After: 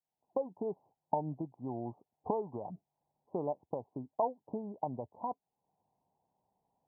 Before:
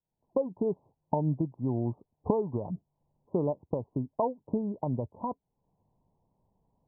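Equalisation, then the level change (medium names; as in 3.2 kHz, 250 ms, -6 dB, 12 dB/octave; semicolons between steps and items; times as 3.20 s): high-pass 260 Hz 6 dB/octave; peaking EQ 770 Hz +10 dB 0.44 oct; -6.5 dB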